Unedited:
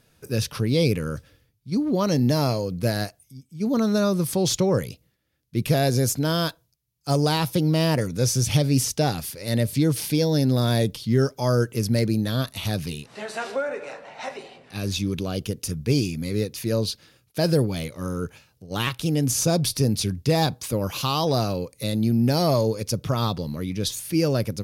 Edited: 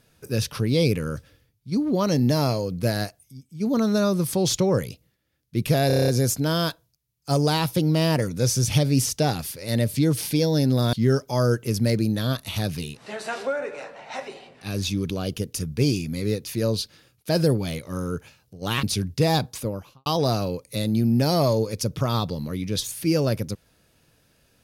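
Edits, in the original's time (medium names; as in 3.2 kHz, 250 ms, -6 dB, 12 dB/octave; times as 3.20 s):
5.87 s: stutter 0.03 s, 8 plays
10.72–11.02 s: delete
18.92–19.91 s: delete
20.54–21.14 s: studio fade out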